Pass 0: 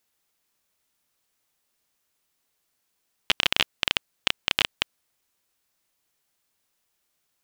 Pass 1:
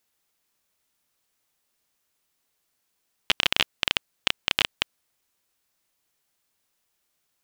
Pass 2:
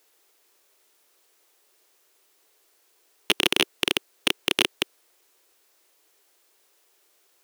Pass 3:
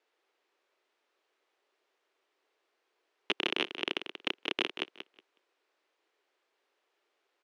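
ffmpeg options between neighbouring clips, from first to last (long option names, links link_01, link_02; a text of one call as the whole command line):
ffmpeg -i in.wav -af anull out.wav
ffmpeg -i in.wav -af "lowshelf=frequency=260:width_type=q:width=3:gain=-13,apsyclip=17dB,volume=-6.5dB" out.wav
ffmpeg -i in.wav -af "highpass=220,lowpass=2900,aecho=1:1:184|368|552:0.316|0.0569|0.0102,volume=-7.5dB" out.wav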